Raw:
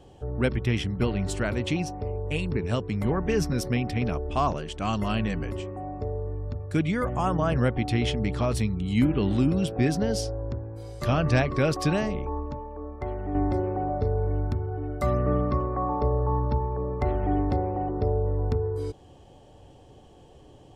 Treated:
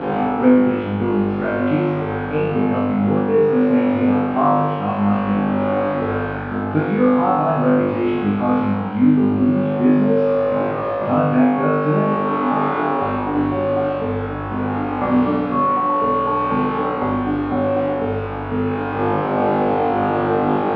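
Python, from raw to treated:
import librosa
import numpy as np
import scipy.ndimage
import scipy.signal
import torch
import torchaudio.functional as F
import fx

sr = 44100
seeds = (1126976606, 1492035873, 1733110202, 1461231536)

p1 = fx.delta_mod(x, sr, bps=32000, step_db=-26.0)
p2 = fx.doubler(p1, sr, ms=48.0, db=-6.5)
p3 = p2 + fx.room_flutter(p2, sr, wall_m=3.4, rt60_s=1.3, dry=0)
p4 = fx.rider(p3, sr, range_db=10, speed_s=0.5)
y = fx.cabinet(p4, sr, low_hz=170.0, low_slope=12, high_hz=2100.0, hz=(180.0, 260.0, 470.0, 800.0, 1300.0, 1900.0), db=(5, 7, 4, 6, 3, -8))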